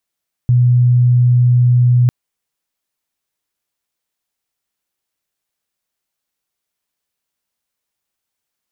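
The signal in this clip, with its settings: tone sine 123 Hz -7.5 dBFS 1.60 s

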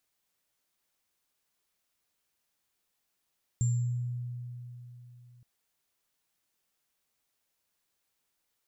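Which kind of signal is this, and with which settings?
sine partials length 1.82 s, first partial 122 Hz, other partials 7.35 kHz, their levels -12 dB, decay 3.47 s, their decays 0.65 s, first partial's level -23 dB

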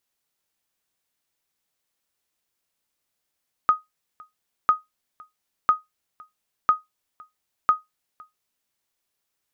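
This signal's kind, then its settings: sonar ping 1.25 kHz, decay 0.17 s, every 1.00 s, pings 5, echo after 0.51 s, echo -27 dB -8.5 dBFS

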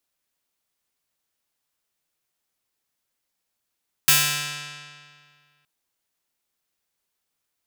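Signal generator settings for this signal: plucked string D3, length 1.57 s, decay 2.05 s, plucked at 0.48, bright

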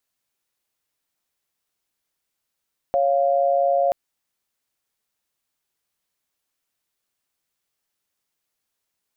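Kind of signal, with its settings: chord C#5/F5 sine, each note -19 dBFS 0.98 s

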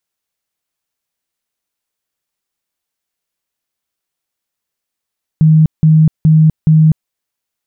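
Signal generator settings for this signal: tone bursts 157 Hz, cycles 39, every 0.42 s, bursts 4, -4 dBFS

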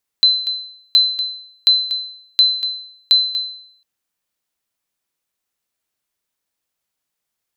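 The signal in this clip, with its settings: sonar ping 4.05 kHz, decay 0.65 s, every 0.72 s, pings 5, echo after 0.24 s, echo -12 dB -5 dBFS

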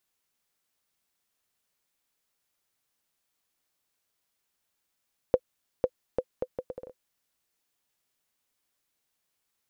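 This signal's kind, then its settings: bouncing ball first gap 0.50 s, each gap 0.69, 508 Hz, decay 55 ms -9 dBFS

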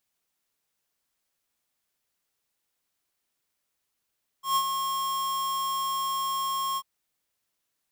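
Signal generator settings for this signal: ADSR square 1.08 kHz, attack 131 ms, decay 64 ms, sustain -6.5 dB, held 2.34 s, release 53 ms -22.5 dBFS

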